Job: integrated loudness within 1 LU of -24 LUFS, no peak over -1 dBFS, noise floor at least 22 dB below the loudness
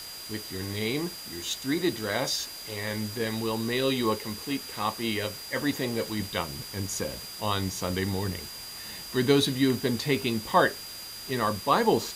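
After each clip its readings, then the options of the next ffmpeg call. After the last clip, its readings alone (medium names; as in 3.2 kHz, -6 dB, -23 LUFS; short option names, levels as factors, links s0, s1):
steady tone 4.8 kHz; tone level -41 dBFS; noise floor -41 dBFS; noise floor target -51 dBFS; loudness -29.0 LUFS; peak level -8.5 dBFS; loudness target -24.0 LUFS
-> -af "bandreject=f=4800:w=30"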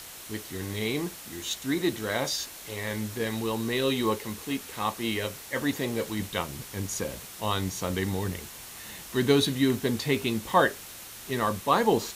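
steady tone not found; noise floor -44 dBFS; noise floor target -51 dBFS
-> -af "afftdn=nr=7:nf=-44"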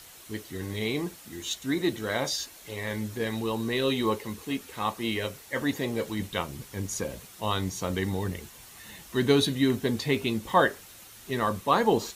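noise floor -49 dBFS; noise floor target -51 dBFS
-> -af "afftdn=nr=6:nf=-49"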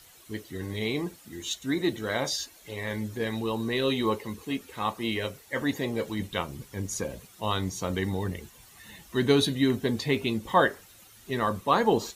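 noise floor -54 dBFS; loudness -29.0 LUFS; peak level -8.0 dBFS; loudness target -24.0 LUFS
-> -af "volume=1.78"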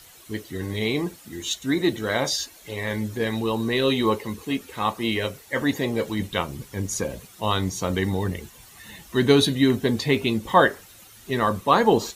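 loudness -24.0 LUFS; peak level -3.0 dBFS; noise floor -49 dBFS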